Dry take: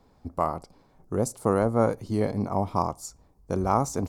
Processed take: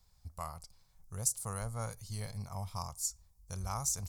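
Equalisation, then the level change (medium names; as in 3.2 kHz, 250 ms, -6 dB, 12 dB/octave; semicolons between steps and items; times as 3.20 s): tone controls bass +10 dB, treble +12 dB; amplifier tone stack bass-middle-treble 10-0-10; -6.0 dB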